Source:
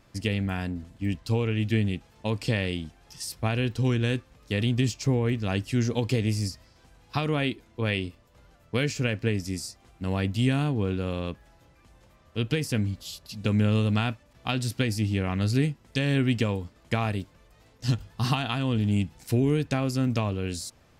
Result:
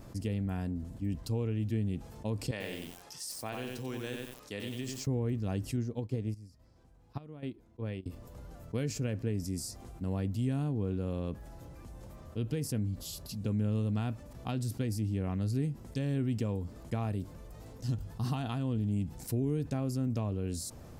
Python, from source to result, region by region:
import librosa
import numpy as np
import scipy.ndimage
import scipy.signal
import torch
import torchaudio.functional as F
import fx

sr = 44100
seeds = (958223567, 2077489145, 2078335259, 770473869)

y = fx.chain(x, sr, fx.highpass(hz=1200.0, slope=6),
    fx.high_shelf(hz=9100.0, db=-9.0),
    fx.echo_crushed(ms=92, feedback_pct=35, bits=8, wet_db=-3.5), at=(2.51, 5.07))
y = fx.chain(y, sr, fx.high_shelf(hz=4900.0, db=-7.5),
    fx.chopper(hz=1.2, depth_pct=65, duty_pct=70),
    fx.upward_expand(threshold_db=-40.0, expansion=2.5), at=(5.76, 8.06))
y = fx.peak_eq(y, sr, hz=2600.0, db=-13.0, octaves=2.7)
y = fx.env_flatten(y, sr, amount_pct=50)
y = F.gain(torch.from_numpy(y), -8.5).numpy()